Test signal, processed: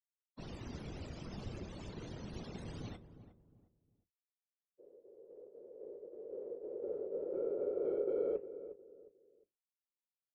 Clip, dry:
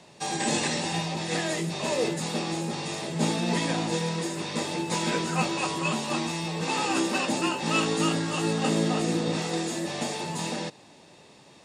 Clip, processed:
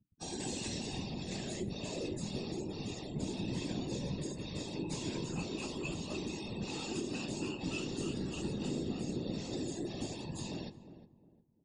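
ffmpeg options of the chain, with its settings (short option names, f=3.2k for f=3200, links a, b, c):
-filter_complex "[0:a]highpass=54,afftfilt=real='re*gte(hypot(re,im),0.0178)':imag='im*gte(hypot(re,im),0.0178)':win_size=1024:overlap=0.75,asplit=2[a][b];[b]adelay=15,volume=-14dB[c];[a][c]amix=inputs=2:normalize=0,flanger=delay=7.5:depth=6.8:regen=-73:speed=0.33:shape=triangular,acrossover=split=400|3000[d][e][f];[e]acompressor=threshold=-57dB:ratio=1.5[g];[d][g][f]amix=inputs=3:normalize=0,equalizer=f=1.5k:t=o:w=2.5:g=-8,asplit=2[h][i];[i]asoftclip=type=tanh:threshold=-32dB,volume=-10dB[j];[h][j]amix=inputs=2:normalize=0,adynamicequalizer=threshold=0.00141:dfrequency=2700:dqfactor=7:tfrequency=2700:tqfactor=7:attack=5:release=100:ratio=0.375:range=2:mode=boostabove:tftype=bell,acompressor=threshold=-31dB:ratio=4,lowpass=7.7k,afftfilt=real='hypot(re,im)*cos(2*PI*random(0))':imag='hypot(re,im)*sin(2*PI*random(1))':win_size=512:overlap=0.75,asplit=2[k][l];[l]adelay=358,lowpass=f=830:p=1,volume=-11.5dB,asplit=2[m][n];[n]adelay=358,lowpass=f=830:p=1,volume=0.33,asplit=2[o][p];[p]adelay=358,lowpass=f=830:p=1,volume=0.33[q];[m][o][q]amix=inputs=3:normalize=0[r];[k][r]amix=inputs=2:normalize=0,volume=3dB"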